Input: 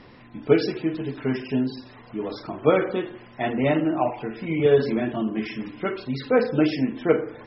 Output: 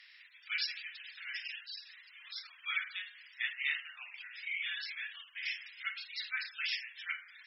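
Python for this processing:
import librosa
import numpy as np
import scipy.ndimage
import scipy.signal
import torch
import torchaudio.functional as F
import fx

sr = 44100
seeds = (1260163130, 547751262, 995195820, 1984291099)

y = scipy.signal.sosfilt(scipy.signal.butter(6, 1800.0, 'highpass', fs=sr, output='sos'), x)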